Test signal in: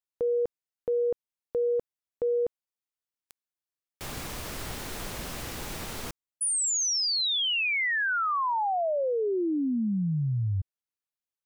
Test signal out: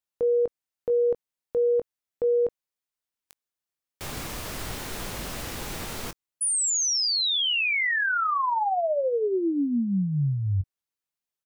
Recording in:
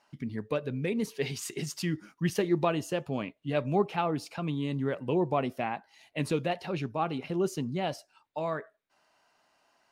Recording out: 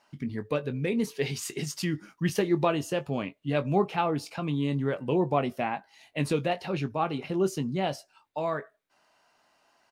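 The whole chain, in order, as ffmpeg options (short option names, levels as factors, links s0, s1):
-filter_complex "[0:a]asplit=2[s0][s1];[s1]adelay=21,volume=0.282[s2];[s0][s2]amix=inputs=2:normalize=0,volume=1.26"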